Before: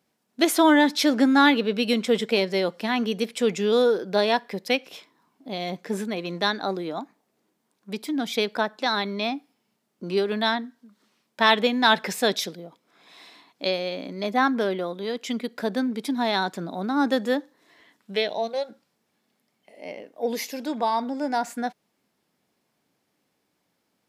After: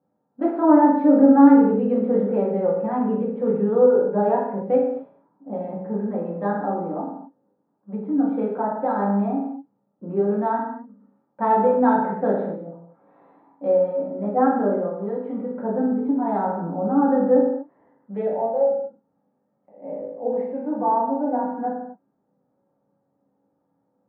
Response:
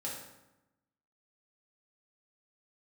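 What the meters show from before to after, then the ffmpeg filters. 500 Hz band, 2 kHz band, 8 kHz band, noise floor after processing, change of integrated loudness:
+4.5 dB, −12.5 dB, below −40 dB, −72 dBFS, +3.0 dB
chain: -filter_complex "[0:a]lowpass=frequency=1100:width=0.5412,lowpass=frequency=1100:width=1.3066[link_01];[1:a]atrim=start_sample=2205,afade=type=out:start_time=0.32:duration=0.01,atrim=end_sample=14553[link_02];[link_01][link_02]afir=irnorm=-1:irlink=0,volume=2dB"

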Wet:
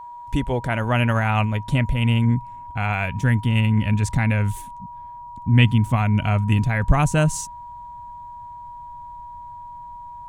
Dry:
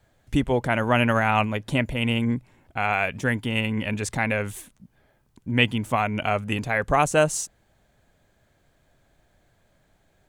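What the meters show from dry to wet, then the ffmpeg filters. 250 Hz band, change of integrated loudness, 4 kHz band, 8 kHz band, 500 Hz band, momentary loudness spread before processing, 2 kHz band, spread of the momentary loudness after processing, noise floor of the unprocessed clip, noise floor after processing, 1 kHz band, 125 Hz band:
+3.0 dB, +3.0 dB, −1.0 dB, −1.0 dB, −3.5 dB, 8 LU, −1.5 dB, 19 LU, −65 dBFS, −38 dBFS, −0.5 dB, +10.0 dB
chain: -af "asubboost=boost=8:cutoff=160,aeval=exprs='val(0)+0.02*sin(2*PI*960*n/s)':channel_layout=same,volume=-1dB"

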